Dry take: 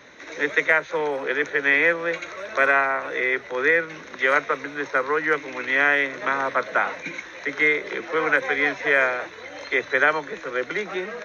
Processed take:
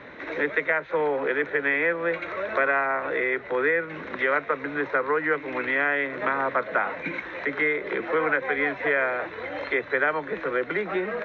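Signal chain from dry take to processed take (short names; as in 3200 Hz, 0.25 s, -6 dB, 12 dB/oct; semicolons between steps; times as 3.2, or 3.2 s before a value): compressor 2:1, threshold -32 dBFS, peak gain reduction 10.5 dB; air absorption 410 m; gain +7.5 dB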